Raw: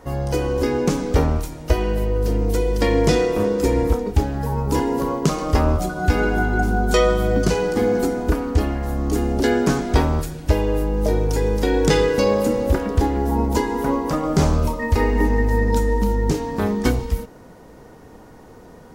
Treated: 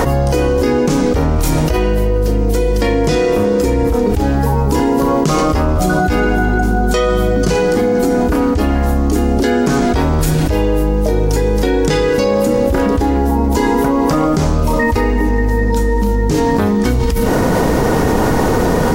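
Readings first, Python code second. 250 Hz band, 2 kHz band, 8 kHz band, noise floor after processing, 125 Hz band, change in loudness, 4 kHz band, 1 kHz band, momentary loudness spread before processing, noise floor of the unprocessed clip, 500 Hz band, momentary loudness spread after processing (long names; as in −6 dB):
+7.5 dB, +6.0 dB, +6.5 dB, −14 dBFS, +5.5 dB, +6.0 dB, +5.0 dB, +7.0 dB, 5 LU, −44 dBFS, +6.0 dB, 2 LU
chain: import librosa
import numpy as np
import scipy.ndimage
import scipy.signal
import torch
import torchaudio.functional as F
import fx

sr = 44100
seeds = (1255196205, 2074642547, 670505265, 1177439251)

y = fx.doubler(x, sr, ms=33.0, db=-13.5)
y = fx.env_flatten(y, sr, amount_pct=100)
y = y * 10.0 ** (-2.0 / 20.0)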